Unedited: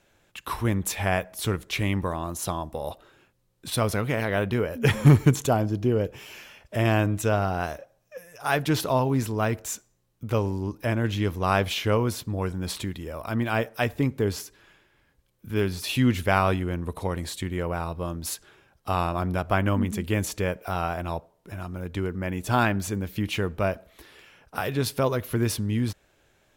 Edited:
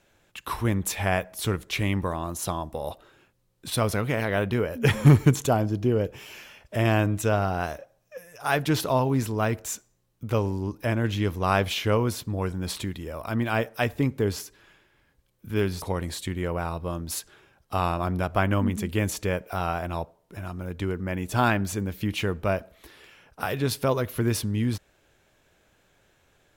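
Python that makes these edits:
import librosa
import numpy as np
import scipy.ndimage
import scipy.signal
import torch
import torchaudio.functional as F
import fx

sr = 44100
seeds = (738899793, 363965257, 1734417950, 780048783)

y = fx.edit(x, sr, fx.cut(start_s=15.82, length_s=1.15), tone=tone)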